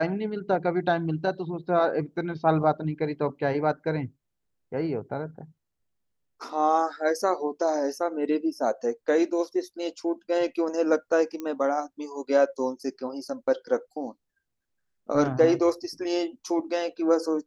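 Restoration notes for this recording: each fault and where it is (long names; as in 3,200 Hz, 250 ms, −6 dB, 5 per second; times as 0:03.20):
0:11.40: click −21 dBFS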